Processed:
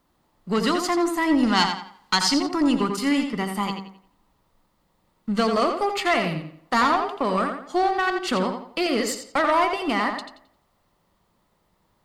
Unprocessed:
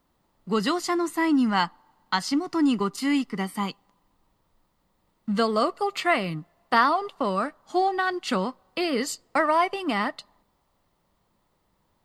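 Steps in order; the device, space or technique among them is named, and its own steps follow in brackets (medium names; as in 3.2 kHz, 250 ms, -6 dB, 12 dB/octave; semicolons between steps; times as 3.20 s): de-hum 65.55 Hz, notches 14; rockabilly slapback (valve stage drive 18 dB, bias 0.4; tape echo 86 ms, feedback 35%, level -5.5 dB, low-pass 5.3 kHz); 1.43–2.49 s: peaking EQ 4.8 kHz +8 dB 2.4 oct; trim +4 dB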